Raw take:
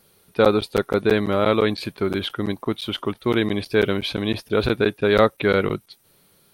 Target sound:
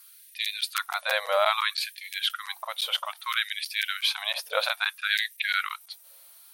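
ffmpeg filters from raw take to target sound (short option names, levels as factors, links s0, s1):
-af "aemphasis=mode=production:type=cd,afftfilt=real='re*gte(b*sr/1024,470*pow(1700/470,0.5+0.5*sin(2*PI*0.61*pts/sr)))':imag='im*gte(b*sr/1024,470*pow(1700/470,0.5+0.5*sin(2*PI*0.61*pts/sr)))':win_size=1024:overlap=0.75"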